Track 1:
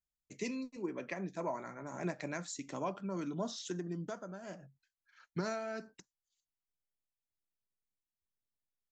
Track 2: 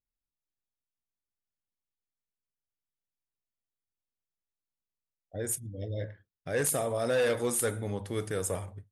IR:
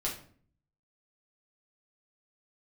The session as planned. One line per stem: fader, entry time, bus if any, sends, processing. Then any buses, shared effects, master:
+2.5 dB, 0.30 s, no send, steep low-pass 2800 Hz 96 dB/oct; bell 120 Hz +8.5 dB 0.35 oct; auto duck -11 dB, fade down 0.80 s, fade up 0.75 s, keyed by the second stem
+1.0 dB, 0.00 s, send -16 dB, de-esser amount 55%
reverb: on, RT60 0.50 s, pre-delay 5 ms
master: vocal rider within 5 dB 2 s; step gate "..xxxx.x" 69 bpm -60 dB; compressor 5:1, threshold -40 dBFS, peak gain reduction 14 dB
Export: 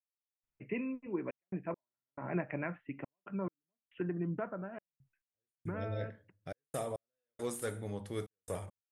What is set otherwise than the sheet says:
stem 2 +1.0 dB -> -8.0 dB; master: missing compressor 5:1, threshold -40 dBFS, peak gain reduction 14 dB

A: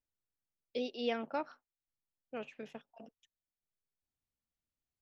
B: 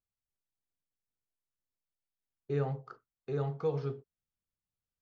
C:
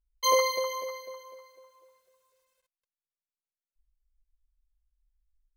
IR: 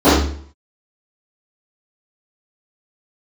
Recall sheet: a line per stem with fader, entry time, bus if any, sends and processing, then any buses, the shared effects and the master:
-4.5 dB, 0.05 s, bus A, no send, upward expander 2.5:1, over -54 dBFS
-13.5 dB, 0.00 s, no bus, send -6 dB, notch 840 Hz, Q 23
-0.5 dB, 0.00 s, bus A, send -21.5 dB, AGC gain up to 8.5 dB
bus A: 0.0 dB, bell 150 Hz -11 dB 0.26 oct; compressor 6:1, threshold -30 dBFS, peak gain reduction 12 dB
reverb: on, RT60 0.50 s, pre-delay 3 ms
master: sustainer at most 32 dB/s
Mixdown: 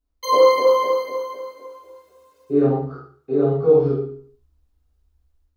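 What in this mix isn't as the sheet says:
stem A: muted; master: missing sustainer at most 32 dB/s

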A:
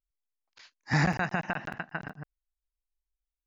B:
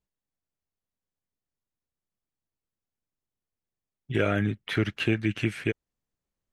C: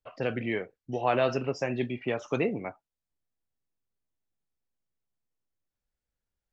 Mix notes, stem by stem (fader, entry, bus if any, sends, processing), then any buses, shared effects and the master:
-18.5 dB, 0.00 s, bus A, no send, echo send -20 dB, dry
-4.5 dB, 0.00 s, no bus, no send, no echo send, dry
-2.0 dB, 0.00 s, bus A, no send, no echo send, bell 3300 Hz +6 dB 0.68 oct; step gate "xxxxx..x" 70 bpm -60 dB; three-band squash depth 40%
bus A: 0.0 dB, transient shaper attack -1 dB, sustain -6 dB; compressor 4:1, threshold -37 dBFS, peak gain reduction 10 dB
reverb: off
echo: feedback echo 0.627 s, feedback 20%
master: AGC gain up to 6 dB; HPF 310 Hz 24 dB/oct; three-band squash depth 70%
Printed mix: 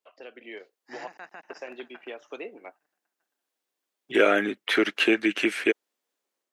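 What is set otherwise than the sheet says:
stem B -4.5 dB -> +2.0 dB; stem C -2.0 dB -> -13.0 dB; master: missing three-band squash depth 70%

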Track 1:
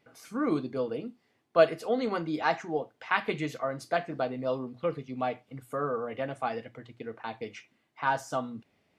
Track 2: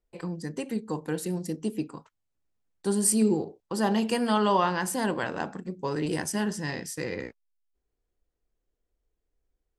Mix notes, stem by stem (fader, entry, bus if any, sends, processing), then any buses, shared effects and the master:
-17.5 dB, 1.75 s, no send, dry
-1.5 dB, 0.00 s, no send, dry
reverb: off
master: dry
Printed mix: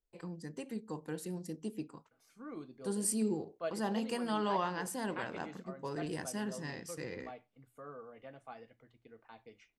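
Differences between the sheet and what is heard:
stem 1: entry 1.75 s -> 2.05 s; stem 2 -1.5 dB -> -10.0 dB

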